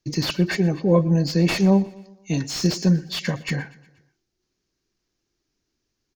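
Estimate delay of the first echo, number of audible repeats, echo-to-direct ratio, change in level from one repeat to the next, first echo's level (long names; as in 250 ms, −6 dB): 120 ms, 3, −19.5 dB, −5.5 dB, −21.0 dB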